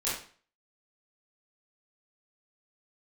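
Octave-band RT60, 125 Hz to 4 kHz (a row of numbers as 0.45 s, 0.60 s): 0.45 s, 0.45 s, 0.45 s, 0.45 s, 0.45 s, 0.40 s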